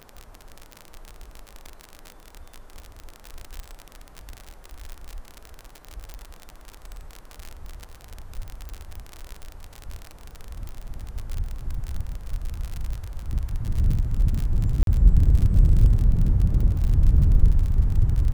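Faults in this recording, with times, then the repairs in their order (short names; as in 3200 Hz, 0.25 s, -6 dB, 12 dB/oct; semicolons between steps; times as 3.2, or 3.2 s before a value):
crackle 48/s -26 dBFS
6.14 pop -22 dBFS
8.69 pop -21 dBFS
10.69 pop -23 dBFS
14.83–14.87 gap 42 ms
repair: de-click; interpolate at 14.83, 42 ms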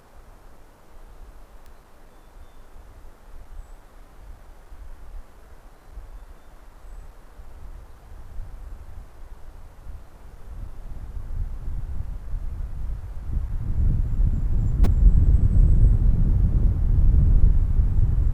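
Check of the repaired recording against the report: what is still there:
none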